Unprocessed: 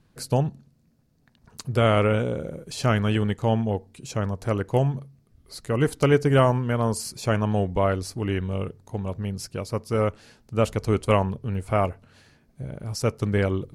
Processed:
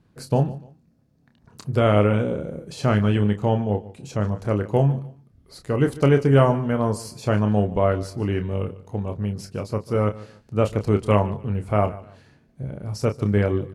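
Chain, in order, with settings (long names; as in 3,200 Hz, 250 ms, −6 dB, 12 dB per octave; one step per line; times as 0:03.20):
high-pass filter 160 Hz 6 dB per octave
spectral tilt −2 dB per octave
double-tracking delay 29 ms −8 dB
repeating echo 147 ms, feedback 28%, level −18.5 dB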